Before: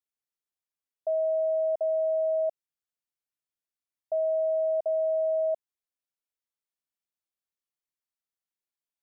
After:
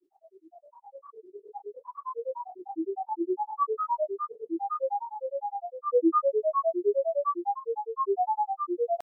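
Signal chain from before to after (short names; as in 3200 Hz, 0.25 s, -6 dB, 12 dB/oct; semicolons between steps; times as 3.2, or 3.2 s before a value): Paulstretch 17×, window 0.50 s, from 3.91; grains, grains 9.8/s, pitch spread up and down by 12 st; gain +1.5 dB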